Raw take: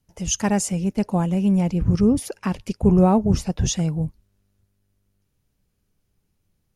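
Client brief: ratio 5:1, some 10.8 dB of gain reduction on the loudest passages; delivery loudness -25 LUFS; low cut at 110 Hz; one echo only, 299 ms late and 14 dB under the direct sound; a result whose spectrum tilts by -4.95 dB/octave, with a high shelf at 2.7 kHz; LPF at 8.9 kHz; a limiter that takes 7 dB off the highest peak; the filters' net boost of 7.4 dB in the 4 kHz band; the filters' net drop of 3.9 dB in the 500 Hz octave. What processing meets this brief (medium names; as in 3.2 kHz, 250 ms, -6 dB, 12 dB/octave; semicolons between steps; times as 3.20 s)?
high-pass 110 Hz; low-pass 8.9 kHz; peaking EQ 500 Hz -5.5 dB; treble shelf 2.7 kHz +6.5 dB; peaking EQ 4 kHz +4.5 dB; compression 5:1, threshold -26 dBFS; peak limiter -22 dBFS; delay 299 ms -14 dB; trim +6 dB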